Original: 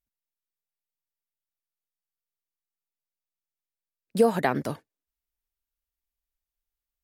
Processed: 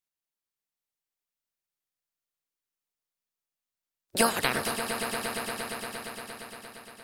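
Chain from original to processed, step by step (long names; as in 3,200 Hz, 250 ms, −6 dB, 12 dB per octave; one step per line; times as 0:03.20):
ceiling on every frequency bin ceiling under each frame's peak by 28 dB
echo that builds up and dies away 116 ms, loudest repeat 5, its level −11.5 dB
level −3 dB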